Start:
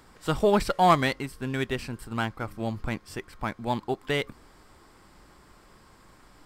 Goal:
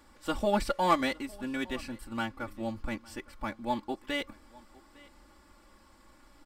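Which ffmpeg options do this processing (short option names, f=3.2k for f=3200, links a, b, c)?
-af "aecho=1:1:3.5:0.92,aecho=1:1:857:0.0668,volume=-7dB"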